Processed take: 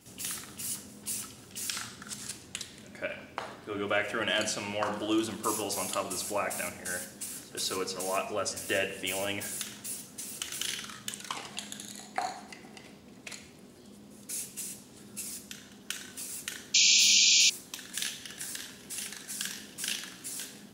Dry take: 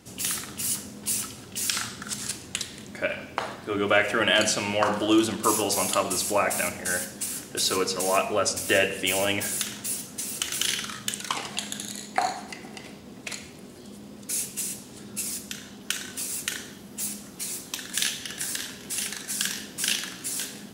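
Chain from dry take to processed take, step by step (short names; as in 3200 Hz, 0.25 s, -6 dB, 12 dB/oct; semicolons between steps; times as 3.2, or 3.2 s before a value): reverse echo 0.187 s -23.5 dB; painted sound noise, 16.74–17.5, 2300–7300 Hz -14 dBFS; gain -8 dB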